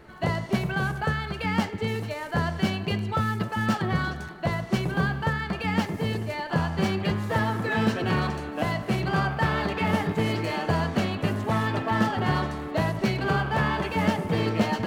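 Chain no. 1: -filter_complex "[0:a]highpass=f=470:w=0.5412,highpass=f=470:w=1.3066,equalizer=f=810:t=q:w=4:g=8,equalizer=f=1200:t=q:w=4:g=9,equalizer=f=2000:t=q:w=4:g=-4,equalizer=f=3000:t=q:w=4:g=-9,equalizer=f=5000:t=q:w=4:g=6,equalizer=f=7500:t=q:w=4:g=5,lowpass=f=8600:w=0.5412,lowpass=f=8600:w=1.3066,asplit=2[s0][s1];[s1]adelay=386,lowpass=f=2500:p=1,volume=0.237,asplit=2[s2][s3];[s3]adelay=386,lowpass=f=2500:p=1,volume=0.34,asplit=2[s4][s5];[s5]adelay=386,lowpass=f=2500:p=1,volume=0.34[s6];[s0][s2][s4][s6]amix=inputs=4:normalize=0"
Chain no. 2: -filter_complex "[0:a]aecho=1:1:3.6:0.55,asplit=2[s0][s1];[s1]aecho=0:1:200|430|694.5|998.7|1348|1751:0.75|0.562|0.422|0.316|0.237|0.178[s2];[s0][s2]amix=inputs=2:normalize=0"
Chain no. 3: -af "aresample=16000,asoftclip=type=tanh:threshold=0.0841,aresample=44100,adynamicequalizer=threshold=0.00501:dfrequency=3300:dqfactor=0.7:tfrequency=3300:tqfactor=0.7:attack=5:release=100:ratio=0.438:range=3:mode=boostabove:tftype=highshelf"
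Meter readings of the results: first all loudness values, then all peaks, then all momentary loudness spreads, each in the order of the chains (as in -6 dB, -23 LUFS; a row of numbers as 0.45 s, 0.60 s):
-26.0 LUFS, -23.0 LUFS, -29.0 LUFS; -9.5 dBFS, -7.5 dBFS, -20.5 dBFS; 7 LU, 4 LU, 3 LU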